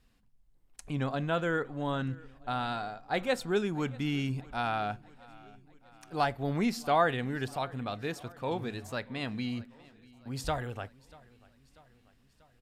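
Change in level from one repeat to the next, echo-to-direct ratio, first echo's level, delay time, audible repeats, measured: −4.5 dB, −21.5 dB, −23.0 dB, 640 ms, 3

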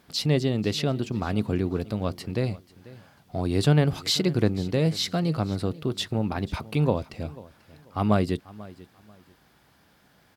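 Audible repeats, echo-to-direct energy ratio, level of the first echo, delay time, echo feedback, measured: 2, −19.5 dB, −20.0 dB, 490 ms, 26%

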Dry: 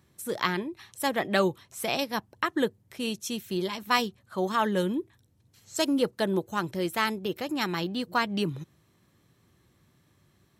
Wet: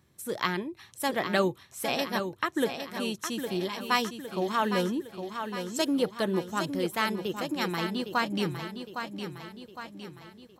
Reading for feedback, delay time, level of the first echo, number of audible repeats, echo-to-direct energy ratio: 51%, 810 ms, −8.0 dB, 5, −6.5 dB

